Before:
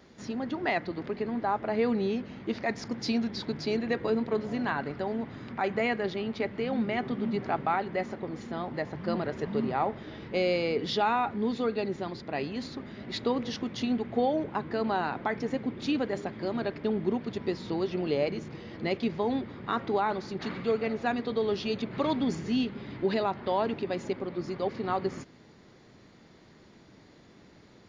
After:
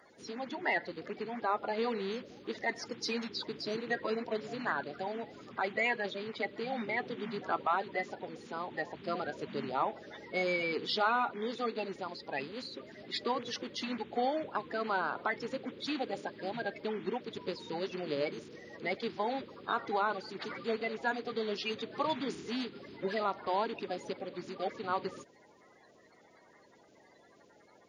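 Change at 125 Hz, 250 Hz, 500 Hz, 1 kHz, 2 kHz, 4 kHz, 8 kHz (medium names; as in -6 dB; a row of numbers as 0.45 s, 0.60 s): -12.0 dB, -10.0 dB, -6.0 dB, -3.0 dB, 0.0 dB, -1.5 dB, no reading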